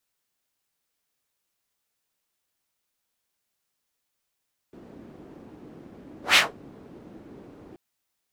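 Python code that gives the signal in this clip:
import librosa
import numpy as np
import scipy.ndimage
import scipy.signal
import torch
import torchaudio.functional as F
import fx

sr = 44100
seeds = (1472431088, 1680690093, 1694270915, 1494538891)

y = fx.whoosh(sr, seeds[0], length_s=3.03, peak_s=1.63, rise_s=0.15, fall_s=0.19, ends_hz=290.0, peak_hz=2800.0, q=1.7, swell_db=31)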